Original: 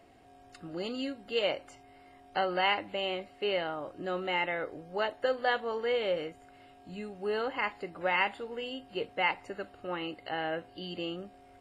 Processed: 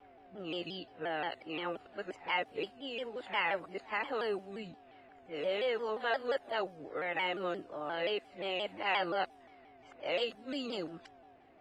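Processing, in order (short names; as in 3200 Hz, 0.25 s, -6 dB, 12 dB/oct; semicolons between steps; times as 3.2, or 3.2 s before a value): whole clip reversed; low shelf 160 Hz -9 dB; in parallel at -1 dB: limiter -27 dBFS, peak gain reduction 11.5 dB; on the sum: low-pass opened by the level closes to 2400 Hz, open at -26.5 dBFS; shaped vibrato saw down 5.7 Hz, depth 160 cents; gain -6.5 dB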